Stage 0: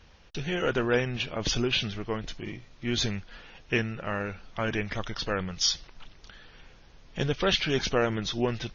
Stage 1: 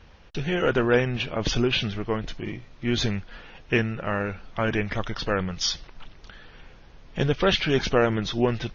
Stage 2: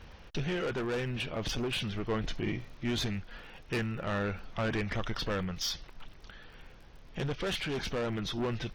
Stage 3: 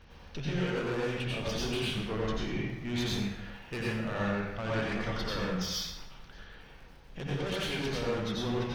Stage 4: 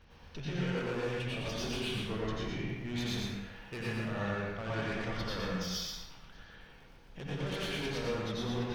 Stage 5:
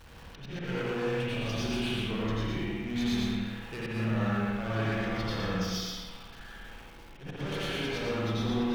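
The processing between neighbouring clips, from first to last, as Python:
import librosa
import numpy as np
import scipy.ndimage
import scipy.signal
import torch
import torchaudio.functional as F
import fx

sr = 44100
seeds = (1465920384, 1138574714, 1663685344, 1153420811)

y1 = fx.high_shelf(x, sr, hz=4500.0, db=-10.5)
y1 = y1 * librosa.db_to_amplitude(5.0)
y2 = 10.0 ** (-24.0 / 20.0) * np.tanh(y1 / 10.0 ** (-24.0 / 20.0))
y2 = fx.rider(y2, sr, range_db=5, speed_s=0.5)
y2 = fx.dmg_crackle(y2, sr, seeds[0], per_s=52.0, level_db=-46.0)
y2 = y2 * librosa.db_to_amplitude(-3.5)
y3 = fx.rev_plate(y2, sr, seeds[1], rt60_s=0.88, hf_ratio=0.75, predelay_ms=75, drr_db=-5.5)
y3 = y3 * librosa.db_to_amplitude(-5.5)
y4 = y3 + 10.0 ** (-3.0 / 20.0) * np.pad(y3, (int(117 * sr / 1000.0), 0))[:len(y3)]
y4 = y4 * librosa.db_to_amplitude(-4.5)
y5 = y4 + 0.5 * 10.0 ** (-50.5 / 20.0) * np.sign(y4)
y5 = fx.auto_swell(y5, sr, attack_ms=102.0)
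y5 = fx.rev_spring(y5, sr, rt60_s=1.1, pass_ms=(54,), chirp_ms=35, drr_db=-0.5)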